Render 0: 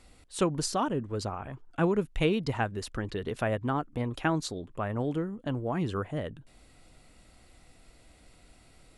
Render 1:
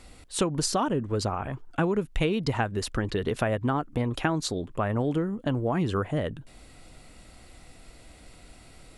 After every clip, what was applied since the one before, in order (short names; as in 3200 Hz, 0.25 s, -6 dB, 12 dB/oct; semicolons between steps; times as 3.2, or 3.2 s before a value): compressor 5:1, threshold -29 dBFS, peak gain reduction 8.5 dB; gain +7 dB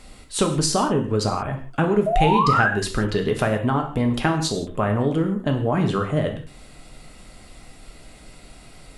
painted sound rise, 2.06–2.7, 620–1700 Hz -25 dBFS; non-linear reverb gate 0.2 s falling, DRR 3.5 dB; gain +4 dB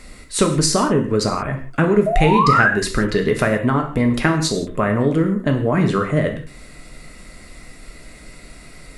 thirty-one-band EQ 100 Hz -7 dB, 800 Hz -8 dB, 2000 Hz +6 dB, 3150 Hz -7 dB; gain +4.5 dB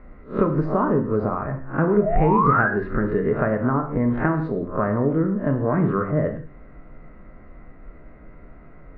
spectral swells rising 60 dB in 0.30 s; LPF 1500 Hz 24 dB/oct; gain -4 dB